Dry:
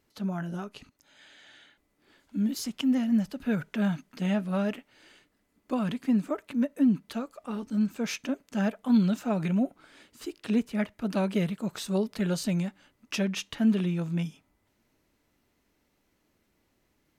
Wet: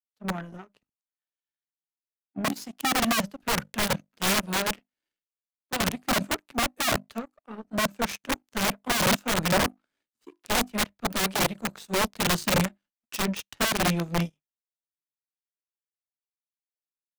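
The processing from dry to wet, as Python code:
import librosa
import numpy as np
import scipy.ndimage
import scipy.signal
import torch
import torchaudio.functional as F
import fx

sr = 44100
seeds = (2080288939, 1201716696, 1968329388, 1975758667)

y = fx.hum_notches(x, sr, base_hz=50, count=7)
y = (np.mod(10.0 ** (23.5 / 20.0) * y + 1.0, 2.0) - 1.0) / 10.0 ** (23.5 / 20.0)
y = fx.power_curve(y, sr, exponent=2.0)
y = fx.band_widen(y, sr, depth_pct=70)
y = y * librosa.db_to_amplitude(6.0)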